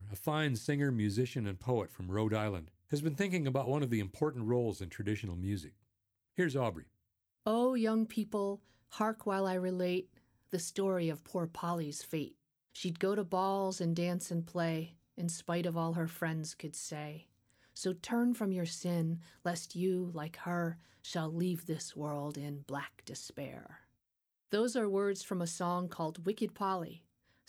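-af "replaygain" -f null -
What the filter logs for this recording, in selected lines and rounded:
track_gain = +16.6 dB
track_peak = 0.077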